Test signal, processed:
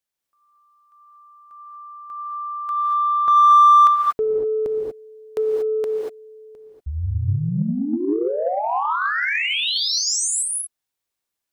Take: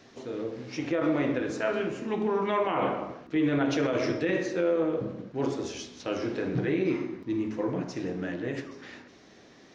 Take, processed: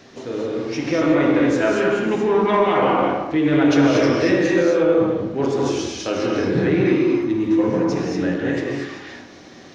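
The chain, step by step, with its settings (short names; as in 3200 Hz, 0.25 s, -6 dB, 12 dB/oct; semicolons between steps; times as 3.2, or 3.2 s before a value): non-linear reverb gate 0.26 s rising, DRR -0.5 dB; in parallel at -8 dB: soft clip -23.5 dBFS; on the sum: gain +5 dB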